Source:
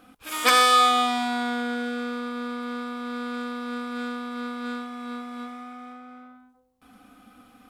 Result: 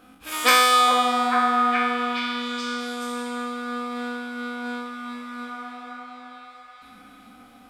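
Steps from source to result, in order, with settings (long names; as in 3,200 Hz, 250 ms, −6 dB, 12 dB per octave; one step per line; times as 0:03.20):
peak hold with a decay on every bin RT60 0.78 s
echo through a band-pass that steps 423 ms, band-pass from 720 Hz, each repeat 0.7 octaves, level −0.5 dB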